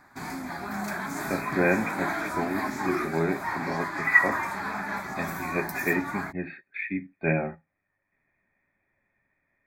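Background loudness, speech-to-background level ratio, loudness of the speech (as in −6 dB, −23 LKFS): −32.0 LKFS, 3.5 dB, −28.5 LKFS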